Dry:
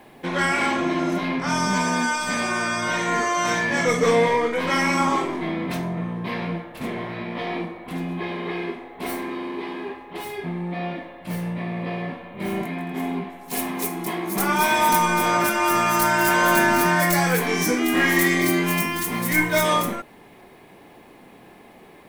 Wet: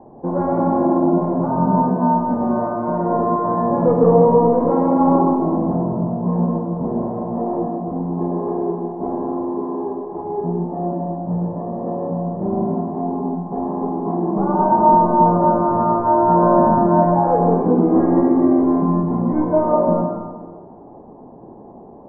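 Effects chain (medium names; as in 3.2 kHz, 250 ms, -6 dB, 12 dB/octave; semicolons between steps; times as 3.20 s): steep low-pass 940 Hz 36 dB/octave; 3.52–5.25 s: added noise brown -62 dBFS; on a send: reverberation RT60 1.6 s, pre-delay 99 ms, DRR 2 dB; on the sum: trim +6 dB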